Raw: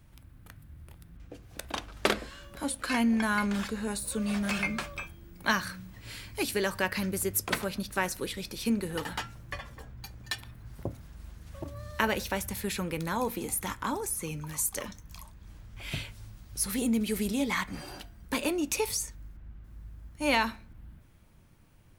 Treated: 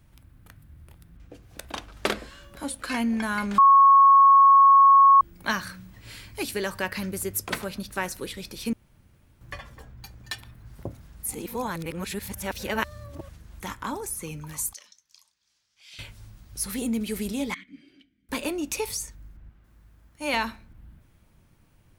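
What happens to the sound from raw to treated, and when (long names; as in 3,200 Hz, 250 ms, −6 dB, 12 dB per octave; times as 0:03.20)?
0:03.58–0:05.21: beep over 1,100 Hz −11 dBFS
0:08.73–0:09.41: fill with room tone
0:11.23–0:13.60: reverse
0:14.73–0:15.99: resonant band-pass 5,200 Hz, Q 2.1
0:17.54–0:18.29: formant filter i
0:19.49–0:20.34: low-shelf EQ 210 Hz −10.5 dB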